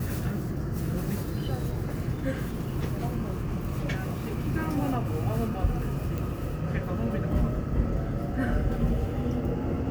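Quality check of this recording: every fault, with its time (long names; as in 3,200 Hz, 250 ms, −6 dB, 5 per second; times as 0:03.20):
0:06.18: click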